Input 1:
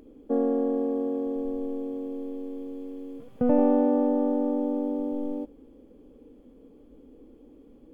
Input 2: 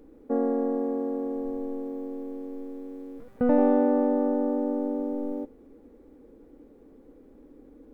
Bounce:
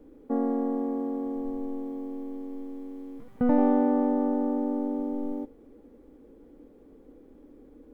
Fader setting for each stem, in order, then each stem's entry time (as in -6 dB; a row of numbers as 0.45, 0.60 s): -9.0, -1.0 dB; 0.00, 0.00 s